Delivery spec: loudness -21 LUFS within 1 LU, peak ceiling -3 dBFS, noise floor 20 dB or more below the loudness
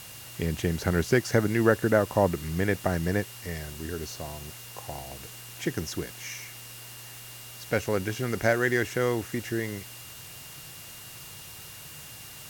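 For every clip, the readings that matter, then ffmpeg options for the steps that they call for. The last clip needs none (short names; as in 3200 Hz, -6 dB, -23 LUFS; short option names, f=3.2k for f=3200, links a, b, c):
steady tone 2800 Hz; tone level -52 dBFS; noise floor -44 dBFS; noise floor target -48 dBFS; loudness -28.0 LUFS; peak -7.0 dBFS; loudness target -21.0 LUFS
-> -af "bandreject=f=2.8k:w=30"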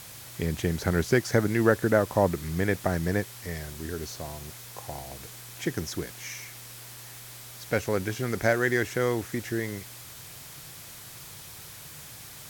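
steady tone none; noise floor -45 dBFS; noise floor target -48 dBFS
-> -af "afftdn=nr=6:nf=-45"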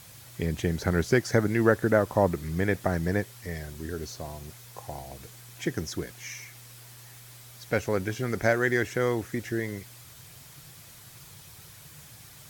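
noise floor -50 dBFS; loudness -28.0 LUFS; peak -7.0 dBFS; loudness target -21.0 LUFS
-> -af "volume=7dB,alimiter=limit=-3dB:level=0:latency=1"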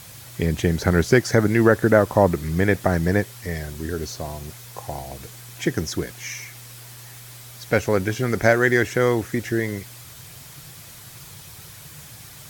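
loudness -21.5 LUFS; peak -3.0 dBFS; noise floor -43 dBFS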